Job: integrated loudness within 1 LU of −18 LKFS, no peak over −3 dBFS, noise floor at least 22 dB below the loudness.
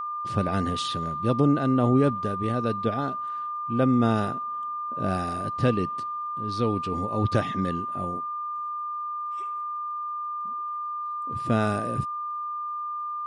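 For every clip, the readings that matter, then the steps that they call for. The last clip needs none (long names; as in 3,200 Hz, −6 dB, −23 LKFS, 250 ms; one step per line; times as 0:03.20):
crackle rate 17 per second; interfering tone 1,200 Hz; level of the tone −29 dBFS; integrated loudness −27.0 LKFS; sample peak −9.0 dBFS; target loudness −18.0 LKFS
→ click removal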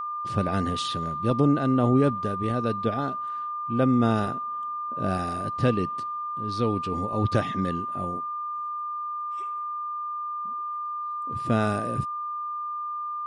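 crackle rate 0 per second; interfering tone 1,200 Hz; level of the tone −29 dBFS
→ notch filter 1,200 Hz, Q 30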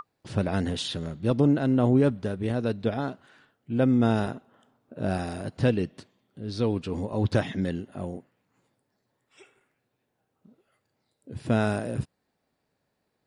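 interfering tone none found; integrated loudness −27.0 LKFS; sample peak −10.0 dBFS; target loudness −18.0 LKFS
→ level +9 dB
brickwall limiter −3 dBFS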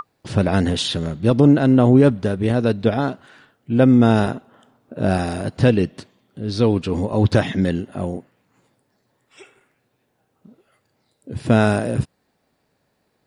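integrated loudness −18.5 LKFS; sample peak −3.0 dBFS; background noise floor −69 dBFS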